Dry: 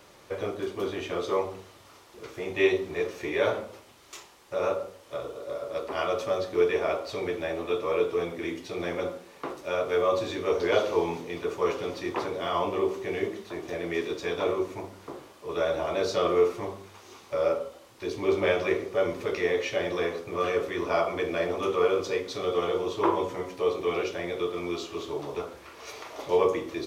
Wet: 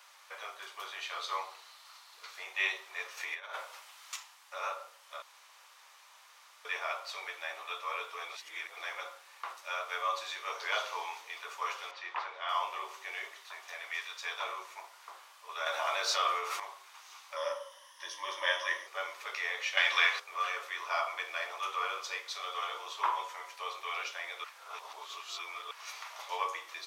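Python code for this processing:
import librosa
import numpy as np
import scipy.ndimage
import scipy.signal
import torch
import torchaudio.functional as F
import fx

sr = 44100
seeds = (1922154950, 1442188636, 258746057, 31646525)

y = fx.peak_eq(x, sr, hz=4200.0, db=8.5, octaves=0.3, at=(1.01, 2.43))
y = fx.over_compress(y, sr, threshold_db=-33.0, ratio=-1.0, at=(3.17, 4.16))
y = fx.lowpass(y, sr, hz=3300.0, slope=12, at=(11.91, 12.49))
y = fx.highpass(y, sr, hz=fx.line((13.29, 300.0), (14.21, 770.0)), slope=12, at=(13.29, 14.21), fade=0.02)
y = fx.env_flatten(y, sr, amount_pct=50, at=(15.66, 16.6))
y = fx.ripple_eq(y, sr, per_octave=1.2, db=14, at=(17.36, 18.87))
y = fx.peak_eq(y, sr, hz=2700.0, db=13.0, octaves=2.9, at=(19.77, 20.2))
y = fx.edit(y, sr, fx.room_tone_fill(start_s=5.22, length_s=1.43),
    fx.reverse_span(start_s=8.29, length_s=0.48),
    fx.reverse_span(start_s=24.44, length_s=1.27), tone=tone)
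y = scipy.signal.sosfilt(scipy.signal.butter(4, 910.0, 'highpass', fs=sr, output='sos'), y)
y = y * 10.0 ** (-1.0 / 20.0)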